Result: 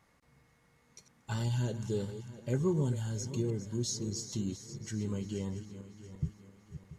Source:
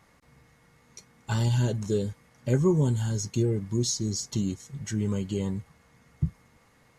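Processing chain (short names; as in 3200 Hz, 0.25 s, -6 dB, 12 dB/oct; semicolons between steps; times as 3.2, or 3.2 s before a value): regenerating reverse delay 0.342 s, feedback 59%, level -11.5 dB; gain -7.5 dB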